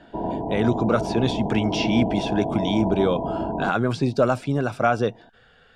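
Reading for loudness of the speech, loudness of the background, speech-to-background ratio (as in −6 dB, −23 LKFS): −23.5 LKFS, −27.5 LKFS, 4.0 dB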